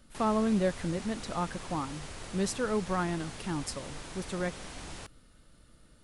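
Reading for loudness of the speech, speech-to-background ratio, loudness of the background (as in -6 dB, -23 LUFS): -33.0 LUFS, 10.5 dB, -43.5 LUFS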